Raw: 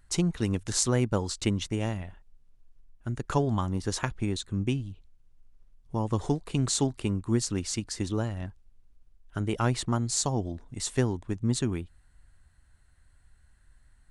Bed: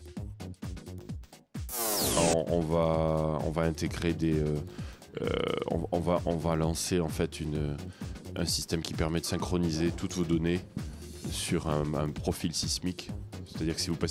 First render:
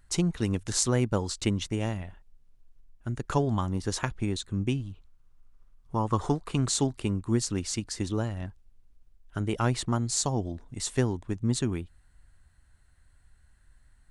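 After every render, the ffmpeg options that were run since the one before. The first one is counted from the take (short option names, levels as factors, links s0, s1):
-filter_complex "[0:a]asettb=1/sr,asplit=3[s0][s1][s2];[s0]atrim=end=4.804[s3];[s1]atrim=start=4.8:end=6.65,asetpts=PTS-STARTPTS,afade=t=in:d=0.004:c=qsin,afade=t=out:st=1.846:d=0.004:c=qsin,equalizer=f=1200:w=1.8:g=10[s4];[s2]atrim=start=6.646[s5];[s3][s4]acrossfade=d=0.004:c1=hsin:c2=qsin[s6];[s6][s5]acrossfade=d=0.004:c1=qsin:c2=hsin"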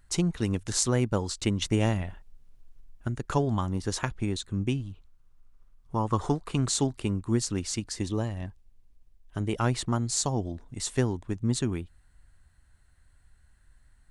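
-filter_complex "[0:a]asettb=1/sr,asplit=3[s0][s1][s2];[s0]atrim=end=1.624[s3];[s1]atrim=start=1.62:end=3.08,asetpts=PTS-STARTPTS,afade=t=in:d=0.004:c=qsin,afade=t=out:st=1.456:d=0.004:c=qsin,acontrast=32[s4];[s2]atrim=start=3.076[s5];[s3][s4]acrossfade=d=0.004:c1=hsin:c2=qsin[s6];[s6][s5]acrossfade=d=0.004:c1=qsin:c2=hsin,asettb=1/sr,asplit=3[s7][s8][s9];[s7]atrim=end=7.964[s10];[s8]atrim=start=7.96:end=9.52,asetpts=PTS-STARTPTS,afade=t=in:d=0.004:c=qsin,afade=t=out:st=1.556:d=0.004:c=qsin,bandreject=f=1400:w=6.2[s11];[s9]atrim=start=9.516[s12];[s10][s11]acrossfade=d=0.004:c1=hsin:c2=qsin[s13];[s13][s12]acrossfade=d=0.004:c1=qsin:c2=hsin"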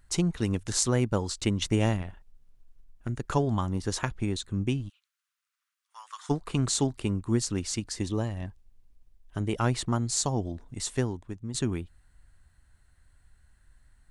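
-filter_complex "[0:a]asettb=1/sr,asplit=3[s0][s1][s2];[s0]atrim=end=1.964[s3];[s1]atrim=start=1.96:end=3.09,asetpts=PTS-STARTPTS,afade=t=in:d=0.004:c=qsin,afade=t=out:st=1.126:d=0.004:c=qsin,aeval=exprs='(tanh(15.8*val(0)+0.7)-tanh(0.7))/15.8':c=same[s4];[s2]atrim=start=3.086[s5];[s3][s4]acrossfade=d=0.004:c1=hsin:c2=qsin[s6];[s6][s5]acrossfade=d=0.004:c1=qsin:c2=hsin,asplit=3[s7][s8][s9];[s7]afade=t=out:st=4.88:d=0.02[s10];[s8]highpass=f=1500:w=0.5412,highpass=f=1500:w=1.3066,afade=t=in:st=4.88:d=0.02,afade=t=out:st=6.29:d=0.02[s11];[s9]afade=t=in:st=6.29:d=0.02[s12];[s10][s11][s12]amix=inputs=3:normalize=0,asplit=2[s13][s14];[s13]atrim=end=11.54,asetpts=PTS-STARTPTS,afade=t=out:st=10.78:d=0.76:silence=0.266073[s15];[s14]atrim=start=11.54,asetpts=PTS-STARTPTS,afade=t=in:d=0.004:c=hsin:silence=0.266073[s16];[s15][s16]concat=n=2:v=0:a=1"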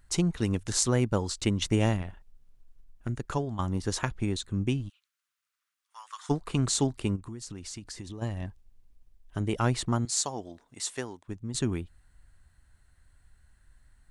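-filter_complex "[0:a]asplit=3[s0][s1][s2];[s0]afade=t=out:st=7.15:d=0.02[s3];[s1]acompressor=threshold=0.0141:ratio=6:attack=3.2:release=140:knee=1:detection=peak,afade=t=in:st=7.15:d=0.02,afade=t=out:st=8.21:d=0.02[s4];[s2]afade=t=in:st=8.21:d=0.02[s5];[s3][s4][s5]amix=inputs=3:normalize=0,asettb=1/sr,asplit=3[s6][s7][s8];[s6]atrim=end=10.054[s9];[s7]atrim=start=10.05:end=11.28,asetpts=PTS-STARTPTS,afade=t=in:d=0.004:c=qsin,afade=t=out:st=1.226:d=0.004:c=qsin,highpass=f=690:p=1[s10];[s8]atrim=start=11.276[s11];[s9][s10]acrossfade=d=0.004:c1=hsin:c2=qsin[s12];[s12][s11]acrossfade=d=0.004:c1=qsin:c2=hsin,asplit=2[s13][s14];[s13]atrim=end=3.59,asetpts=PTS-STARTPTS,afade=t=out:st=3.11:d=0.48:silence=0.298538[s15];[s14]atrim=start=3.59,asetpts=PTS-STARTPTS,afade=t=in:d=0.004:c=hsin:silence=0.298538[s16];[s15][s16]concat=n=2:v=0:a=1"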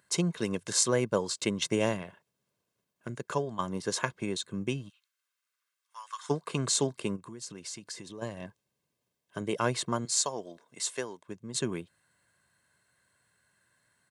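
-af "highpass=f=160:w=0.5412,highpass=f=160:w=1.3066,aecho=1:1:1.9:0.49"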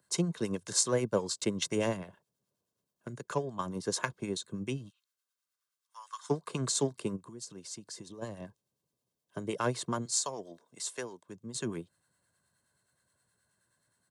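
-filter_complex "[0:a]acrossover=split=970[s0][s1];[s0]aeval=exprs='val(0)*(1-0.5/2+0.5/2*cos(2*PI*9.5*n/s))':c=same[s2];[s1]aeval=exprs='val(0)*(1-0.5/2-0.5/2*cos(2*PI*9.5*n/s))':c=same[s3];[s2][s3]amix=inputs=2:normalize=0,acrossover=split=110|440|2700[s4][s5][s6][s7];[s6]adynamicsmooth=sensitivity=7:basefreq=1800[s8];[s4][s5][s8][s7]amix=inputs=4:normalize=0"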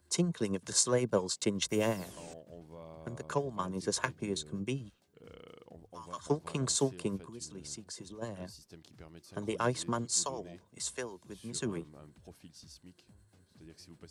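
-filter_complex "[1:a]volume=0.075[s0];[0:a][s0]amix=inputs=2:normalize=0"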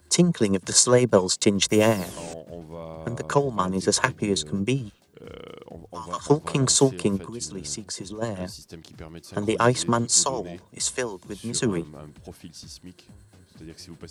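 -af "volume=3.76,alimiter=limit=0.794:level=0:latency=1"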